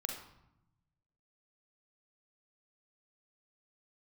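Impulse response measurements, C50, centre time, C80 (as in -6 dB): 4.5 dB, 33 ms, 8.0 dB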